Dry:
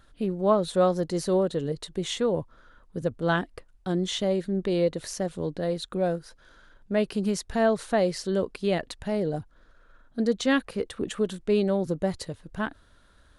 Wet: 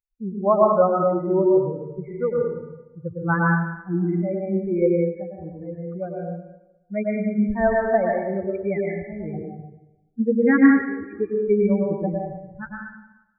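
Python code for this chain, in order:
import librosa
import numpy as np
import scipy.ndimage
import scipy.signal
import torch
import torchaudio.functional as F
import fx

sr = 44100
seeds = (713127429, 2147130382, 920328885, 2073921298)

y = fx.bin_expand(x, sr, power=3.0)
y = fx.brickwall_lowpass(y, sr, high_hz=2400.0)
y = fx.rev_plate(y, sr, seeds[0], rt60_s=0.99, hf_ratio=1.0, predelay_ms=95, drr_db=-3.0)
y = y * 10.0 ** (7.0 / 20.0)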